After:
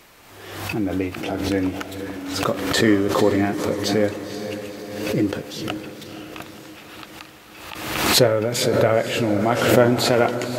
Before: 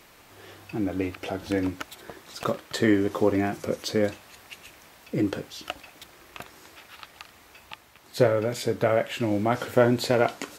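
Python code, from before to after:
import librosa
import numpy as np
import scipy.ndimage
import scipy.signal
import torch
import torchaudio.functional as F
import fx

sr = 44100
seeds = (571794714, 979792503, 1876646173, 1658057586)

y = fx.echo_diffused(x, sr, ms=506, feedback_pct=53, wet_db=-9.0)
y = fx.pre_swell(y, sr, db_per_s=48.0)
y = F.gain(torch.from_numpy(y), 3.5).numpy()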